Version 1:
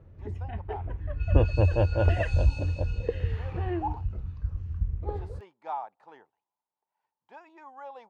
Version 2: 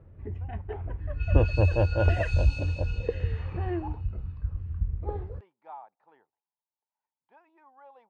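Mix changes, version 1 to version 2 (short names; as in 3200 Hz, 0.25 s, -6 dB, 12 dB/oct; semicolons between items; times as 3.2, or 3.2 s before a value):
speech -9.5 dB; second sound: remove tape spacing loss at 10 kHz 25 dB; master: add LPF 2900 Hz 12 dB/oct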